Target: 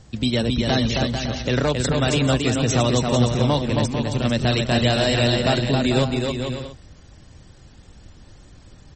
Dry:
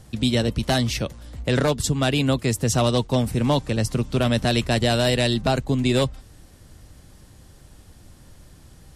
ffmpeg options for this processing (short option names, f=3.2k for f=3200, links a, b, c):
-filter_complex "[0:a]asettb=1/sr,asplit=3[a][b][c];[a]atrim=end=3.834[d];[b]atrim=start=3.83:end=4.25,asetpts=PTS-STARTPTS,afade=t=in:d=0.004:c=qsin,afade=t=out:st=0.416:d=0.004:c=qsin,equalizer=f=820:w=0.39:g=-9[e];[c]atrim=start=4.246[f];[d][e]acrossfade=d=0.004:c1=hsin:c2=qsin[g];[g][f]acrossfade=d=0.004:c1=qsin:c2=hsin,asplit=2[h][i];[i]aecho=0:1:270|445.5|559.6|633.7|681.9:0.631|0.398|0.251|0.158|0.1[j];[h][j]amix=inputs=2:normalize=0" -ar 48000 -c:a libmp3lame -b:a 32k